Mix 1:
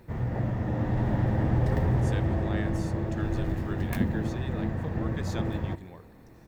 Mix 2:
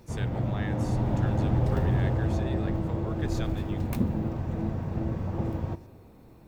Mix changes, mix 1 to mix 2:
speech: entry -1.95 s; background: add bell 1800 Hz -11.5 dB 0.3 oct

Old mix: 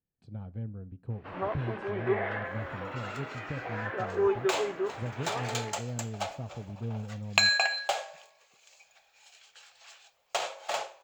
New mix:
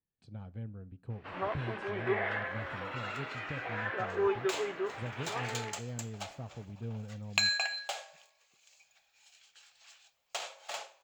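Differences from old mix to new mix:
second sound -8.0 dB; master: add tilt shelf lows -4.5 dB, about 1300 Hz

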